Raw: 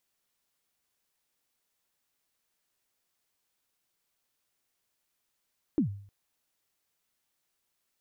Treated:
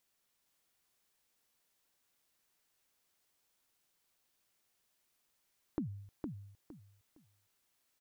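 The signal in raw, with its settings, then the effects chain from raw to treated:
kick drum length 0.31 s, from 340 Hz, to 100 Hz, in 105 ms, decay 0.54 s, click off, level -19.5 dB
compression, threshold -36 dBFS; on a send: feedback delay 461 ms, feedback 24%, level -4.5 dB

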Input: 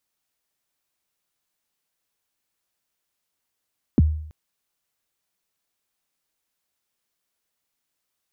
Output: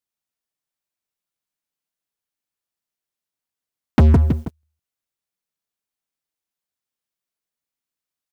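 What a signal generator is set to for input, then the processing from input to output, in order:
kick drum length 0.33 s, from 340 Hz, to 77 Hz, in 28 ms, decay 0.65 s, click off, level -9.5 dB
peaking EQ 170 Hz +2.5 dB 1.6 oct; on a send: feedback delay 161 ms, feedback 30%, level -9 dB; on the sum: waveshaping leveller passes 5

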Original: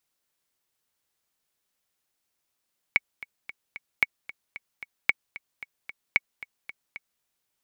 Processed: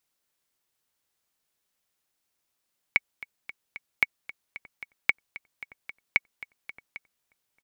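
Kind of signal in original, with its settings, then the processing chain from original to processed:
metronome 225 bpm, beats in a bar 4, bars 4, 2.23 kHz, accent 18.5 dB -6 dBFS
echo from a far wall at 290 m, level -19 dB

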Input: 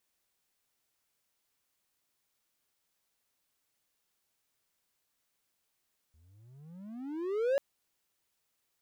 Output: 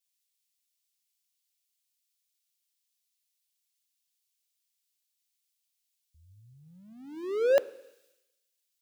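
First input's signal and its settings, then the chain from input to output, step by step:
gliding synth tone triangle, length 1.44 s, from 75.6 Hz, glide +35 st, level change +37.5 dB, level -22 dB
bass shelf 96 Hz -7 dB; plate-style reverb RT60 2.2 s, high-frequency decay 0.9×, DRR 16 dB; three bands expanded up and down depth 100%

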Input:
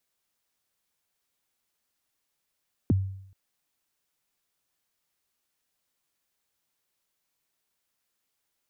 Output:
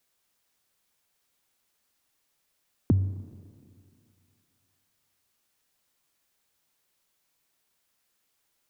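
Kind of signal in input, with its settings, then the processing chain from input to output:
kick drum length 0.43 s, from 360 Hz, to 96 Hz, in 21 ms, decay 0.70 s, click off, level -16.5 dB
in parallel at -3 dB: compression, threshold -31 dBFS; on the sum: Schroeder reverb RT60 2.5 s, combs from 29 ms, DRR 14 dB

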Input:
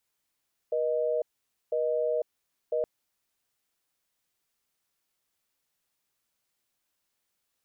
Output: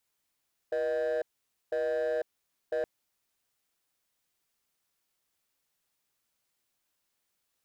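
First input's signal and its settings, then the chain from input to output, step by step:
call progress tone busy tone, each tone -27.5 dBFS 2.12 s
hard clipper -27 dBFS

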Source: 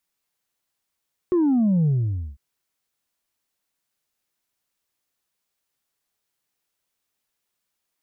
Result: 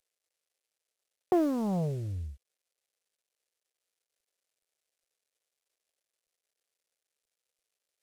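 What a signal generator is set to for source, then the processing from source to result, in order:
sub drop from 370 Hz, over 1.05 s, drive 1.5 dB, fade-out 0.51 s, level -16.5 dB
CVSD coder 64 kbps; graphic EQ 125/250/500/1000 Hz -12/-10/+9/-8 dB; loudspeaker Doppler distortion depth 0.4 ms

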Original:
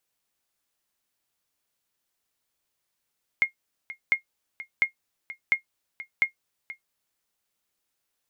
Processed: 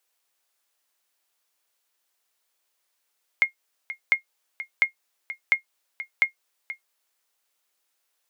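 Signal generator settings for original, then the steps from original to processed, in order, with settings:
sonar ping 2.14 kHz, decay 0.11 s, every 0.70 s, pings 5, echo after 0.48 s, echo -16.5 dB -11.5 dBFS
high-pass 450 Hz 12 dB/octave; in parallel at -3 dB: compression, threshold -28 dBFS

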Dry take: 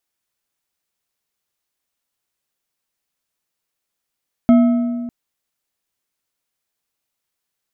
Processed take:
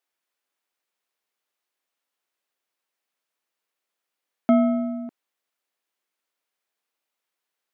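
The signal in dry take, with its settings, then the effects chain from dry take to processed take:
metal hit bar, length 0.60 s, lowest mode 240 Hz, decay 1.88 s, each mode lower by 10.5 dB, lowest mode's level -6 dB
high-pass 180 Hz; tone controls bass -10 dB, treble -7 dB

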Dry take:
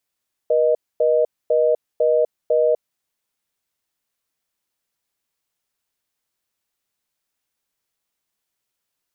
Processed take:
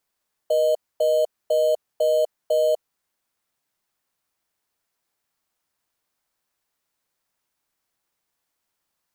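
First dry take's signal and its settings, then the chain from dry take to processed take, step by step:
call progress tone reorder tone, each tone -16.5 dBFS 2.27 s
high-pass 620 Hz 24 dB/octave; in parallel at -8 dB: sample-and-hold 12×

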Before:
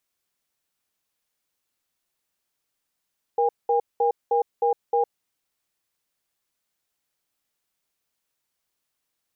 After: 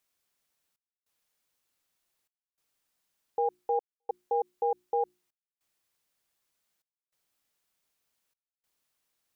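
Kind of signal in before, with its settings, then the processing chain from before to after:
cadence 473 Hz, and 809 Hz, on 0.11 s, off 0.20 s, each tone -20.5 dBFS 1.74 s
hum notches 60/120/180/240/300/360 Hz; peak limiter -20.5 dBFS; trance gate "xxxxx..xxx" 99 bpm -60 dB

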